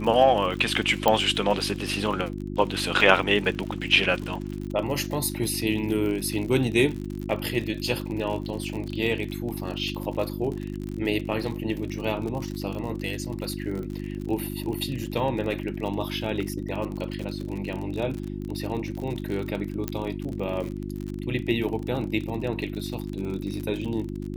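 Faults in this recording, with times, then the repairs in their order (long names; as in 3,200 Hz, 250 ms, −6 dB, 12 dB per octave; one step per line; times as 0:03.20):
surface crackle 54 per second −31 dBFS
mains hum 50 Hz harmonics 7 −33 dBFS
0:01.08: click −6 dBFS
0:19.88: click −12 dBFS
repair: click removal
hum removal 50 Hz, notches 7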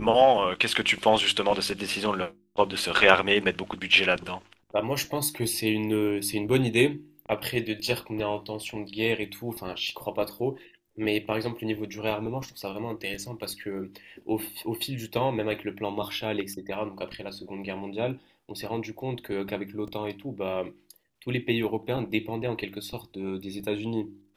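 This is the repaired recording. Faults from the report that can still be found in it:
0:01.08: click
0:19.88: click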